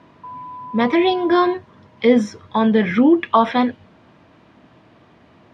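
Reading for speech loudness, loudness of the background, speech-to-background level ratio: -17.5 LUFS, -35.0 LUFS, 17.5 dB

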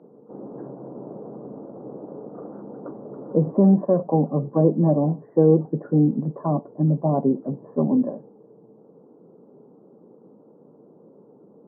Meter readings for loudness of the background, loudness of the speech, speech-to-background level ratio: -39.5 LUFS, -21.0 LUFS, 18.5 dB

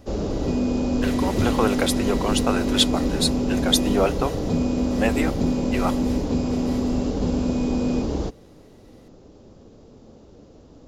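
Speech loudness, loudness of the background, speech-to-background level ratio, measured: -25.0 LUFS, -24.0 LUFS, -1.0 dB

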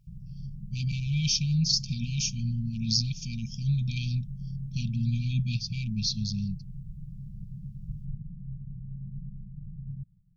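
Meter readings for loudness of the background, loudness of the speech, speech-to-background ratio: -41.5 LUFS, -29.5 LUFS, 12.0 dB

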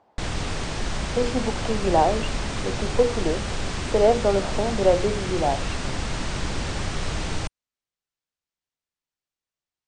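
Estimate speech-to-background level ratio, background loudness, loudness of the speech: 5.0 dB, -29.5 LUFS, -24.5 LUFS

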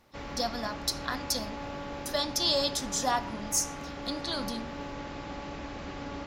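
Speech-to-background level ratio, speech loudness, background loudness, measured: 8.5 dB, -31.0 LUFS, -39.5 LUFS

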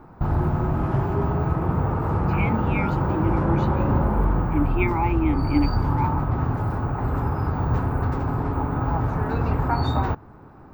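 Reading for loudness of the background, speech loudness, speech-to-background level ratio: -24.0 LUFS, -28.0 LUFS, -4.0 dB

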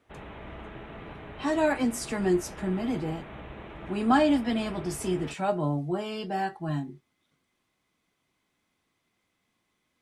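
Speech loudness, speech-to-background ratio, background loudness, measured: -28.5 LUFS, 15.0 dB, -43.5 LUFS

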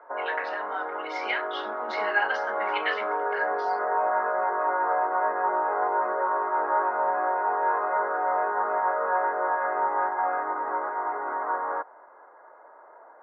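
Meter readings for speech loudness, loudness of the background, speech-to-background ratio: -31.5 LUFS, -27.0 LUFS, -4.5 dB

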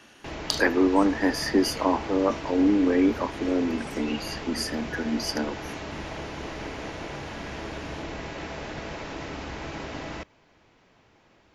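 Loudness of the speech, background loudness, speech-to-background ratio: -25.5 LUFS, -36.0 LUFS, 10.5 dB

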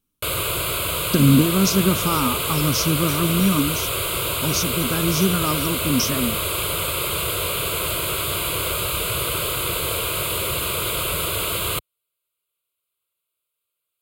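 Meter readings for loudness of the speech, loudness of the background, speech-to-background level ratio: -21.5 LUFS, -22.0 LUFS, 0.5 dB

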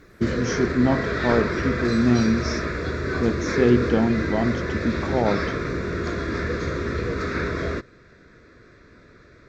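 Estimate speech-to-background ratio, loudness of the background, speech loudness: 3.0 dB, -26.5 LUFS, -23.5 LUFS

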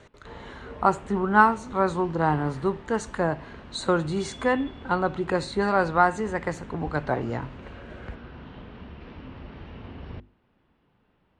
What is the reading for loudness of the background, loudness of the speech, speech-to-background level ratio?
-44.0 LUFS, -25.5 LUFS, 18.5 dB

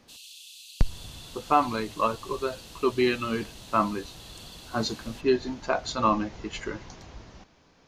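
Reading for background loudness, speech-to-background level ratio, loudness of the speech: -45.5 LUFS, 17.0 dB, -28.5 LUFS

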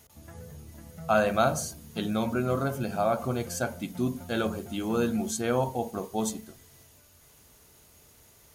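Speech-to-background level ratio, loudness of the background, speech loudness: 16.5 dB, -45.5 LUFS, -29.0 LUFS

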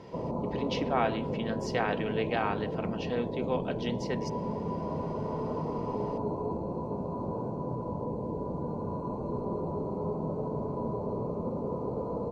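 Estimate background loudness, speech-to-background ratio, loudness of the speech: -34.5 LUFS, 0.5 dB, -34.0 LUFS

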